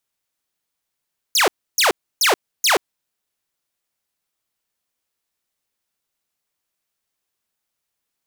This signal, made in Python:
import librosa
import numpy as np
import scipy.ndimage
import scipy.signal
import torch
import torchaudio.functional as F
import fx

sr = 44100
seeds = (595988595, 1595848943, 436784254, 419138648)

y = fx.laser_zaps(sr, level_db=-10.0, start_hz=7100.0, end_hz=320.0, length_s=0.13, wave='saw', shots=4, gap_s=0.3)